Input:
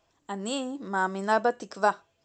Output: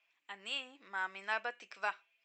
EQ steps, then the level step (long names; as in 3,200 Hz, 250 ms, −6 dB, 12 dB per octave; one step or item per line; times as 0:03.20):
resonant band-pass 2,400 Hz, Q 5.7
+8.0 dB